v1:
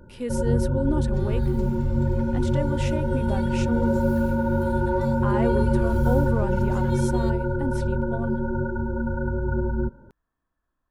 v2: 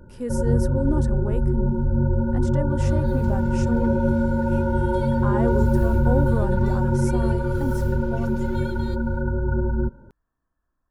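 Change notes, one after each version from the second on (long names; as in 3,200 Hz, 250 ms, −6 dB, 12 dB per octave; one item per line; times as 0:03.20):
speech: add flat-topped bell 3,000 Hz −9 dB 1.2 octaves
second sound: entry +1.65 s
master: add low-shelf EQ 170 Hz +3.5 dB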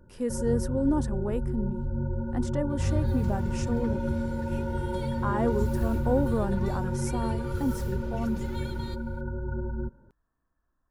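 first sound −9.5 dB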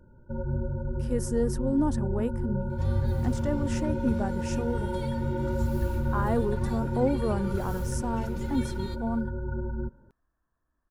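speech: entry +0.90 s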